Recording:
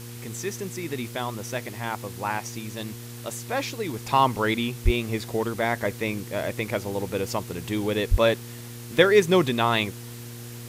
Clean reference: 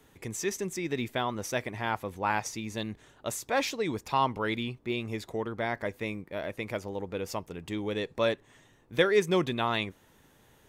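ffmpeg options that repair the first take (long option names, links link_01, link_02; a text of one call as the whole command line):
ffmpeg -i in.wav -filter_complex "[0:a]bandreject=frequency=118.4:width_type=h:width=4,bandreject=frequency=236.8:width_type=h:width=4,bandreject=frequency=355.2:width_type=h:width=4,bandreject=frequency=473.6:width_type=h:width=4,asplit=3[link_01][link_02][link_03];[link_01]afade=type=out:start_time=4.84:duration=0.02[link_04];[link_02]highpass=frequency=140:width=0.5412,highpass=frequency=140:width=1.3066,afade=type=in:start_time=4.84:duration=0.02,afade=type=out:start_time=4.96:duration=0.02[link_05];[link_03]afade=type=in:start_time=4.96:duration=0.02[link_06];[link_04][link_05][link_06]amix=inputs=3:normalize=0,asplit=3[link_07][link_08][link_09];[link_07]afade=type=out:start_time=8.1:duration=0.02[link_10];[link_08]highpass=frequency=140:width=0.5412,highpass=frequency=140:width=1.3066,afade=type=in:start_time=8.1:duration=0.02,afade=type=out:start_time=8.22:duration=0.02[link_11];[link_09]afade=type=in:start_time=8.22:duration=0.02[link_12];[link_10][link_11][link_12]amix=inputs=3:normalize=0,afwtdn=0.0063,asetnsamples=nb_out_samples=441:pad=0,asendcmd='4.01 volume volume -6.5dB',volume=0dB" out.wav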